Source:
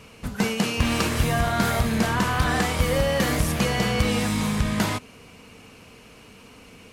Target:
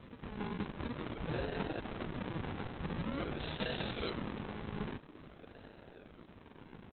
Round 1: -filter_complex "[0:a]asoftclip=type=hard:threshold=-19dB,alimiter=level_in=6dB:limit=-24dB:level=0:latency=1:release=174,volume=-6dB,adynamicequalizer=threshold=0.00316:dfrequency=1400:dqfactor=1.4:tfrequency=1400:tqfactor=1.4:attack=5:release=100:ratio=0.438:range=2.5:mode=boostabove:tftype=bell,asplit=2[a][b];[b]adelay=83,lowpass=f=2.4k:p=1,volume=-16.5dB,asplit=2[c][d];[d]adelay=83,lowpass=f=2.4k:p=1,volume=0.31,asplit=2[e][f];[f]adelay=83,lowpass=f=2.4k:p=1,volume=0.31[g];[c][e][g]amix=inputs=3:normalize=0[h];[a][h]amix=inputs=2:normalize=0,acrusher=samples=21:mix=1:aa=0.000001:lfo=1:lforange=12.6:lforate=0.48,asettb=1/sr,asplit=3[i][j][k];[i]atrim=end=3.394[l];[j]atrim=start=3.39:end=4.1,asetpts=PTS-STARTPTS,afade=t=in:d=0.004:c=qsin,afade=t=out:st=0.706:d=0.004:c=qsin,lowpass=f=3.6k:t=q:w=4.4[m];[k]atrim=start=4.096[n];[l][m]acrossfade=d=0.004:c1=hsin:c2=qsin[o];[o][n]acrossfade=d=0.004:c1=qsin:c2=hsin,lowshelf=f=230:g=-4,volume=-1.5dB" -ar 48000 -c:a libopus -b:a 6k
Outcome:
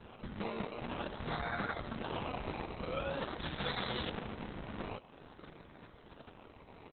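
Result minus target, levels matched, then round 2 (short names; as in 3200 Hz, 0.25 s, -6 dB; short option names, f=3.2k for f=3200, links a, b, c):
decimation with a swept rate: distortion -6 dB
-filter_complex "[0:a]asoftclip=type=hard:threshold=-19dB,alimiter=level_in=6dB:limit=-24dB:level=0:latency=1:release=174,volume=-6dB,adynamicequalizer=threshold=0.00316:dfrequency=1400:dqfactor=1.4:tfrequency=1400:tqfactor=1.4:attack=5:release=100:ratio=0.438:range=2.5:mode=boostabove:tftype=bell,asplit=2[a][b];[b]adelay=83,lowpass=f=2.4k:p=1,volume=-16.5dB,asplit=2[c][d];[d]adelay=83,lowpass=f=2.4k:p=1,volume=0.31,asplit=2[e][f];[f]adelay=83,lowpass=f=2.4k:p=1,volume=0.31[g];[c][e][g]amix=inputs=3:normalize=0[h];[a][h]amix=inputs=2:normalize=0,acrusher=samples=55:mix=1:aa=0.000001:lfo=1:lforange=33:lforate=0.48,asettb=1/sr,asplit=3[i][j][k];[i]atrim=end=3.394[l];[j]atrim=start=3.39:end=4.1,asetpts=PTS-STARTPTS,afade=t=in:d=0.004:c=qsin,afade=t=out:st=0.706:d=0.004:c=qsin,lowpass=f=3.6k:t=q:w=4.4[m];[k]atrim=start=4.096[n];[l][m]acrossfade=d=0.004:c1=hsin:c2=qsin[o];[o][n]acrossfade=d=0.004:c1=qsin:c2=hsin,lowshelf=f=230:g=-4,volume=-1.5dB" -ar 48000 -c:a libopus -b:a 6k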